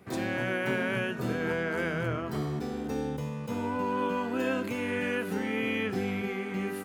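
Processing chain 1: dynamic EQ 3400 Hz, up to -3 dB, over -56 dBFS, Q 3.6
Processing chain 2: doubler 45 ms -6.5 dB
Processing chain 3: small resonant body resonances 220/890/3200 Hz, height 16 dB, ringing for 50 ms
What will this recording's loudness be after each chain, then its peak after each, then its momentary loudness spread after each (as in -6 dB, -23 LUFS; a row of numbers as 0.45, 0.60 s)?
-31.5, -30.5, -23.0 LUFS; -18.0, -16.5, -10.0 dBFS; 4, 5, 5 LU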